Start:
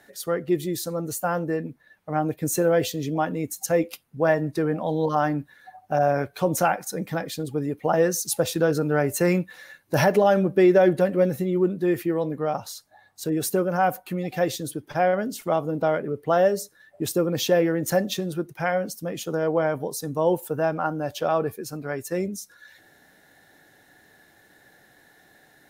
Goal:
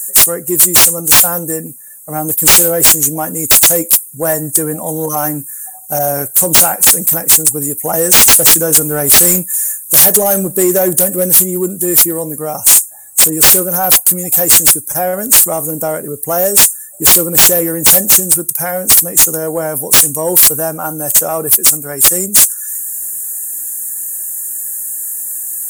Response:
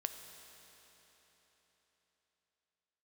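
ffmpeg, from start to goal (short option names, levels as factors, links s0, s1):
-af "highshelf=f=5500:t=q:w=3:g=13,aexciter=amount=11.7:drive=7.5:freq=6800,acontrast=71,volume=0.841"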